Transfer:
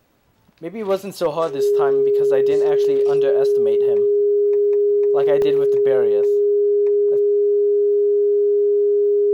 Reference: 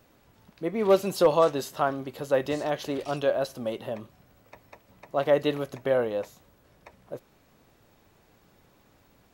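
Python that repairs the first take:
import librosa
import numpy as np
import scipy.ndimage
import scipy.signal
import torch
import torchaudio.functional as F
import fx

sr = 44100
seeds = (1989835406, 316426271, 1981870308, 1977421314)

y = fx.notch(x, sr, hz=410.0, q=30.0)
y = fx.fix_interpolate(y, sr, at_s=(5.42,), length_ms=1.1)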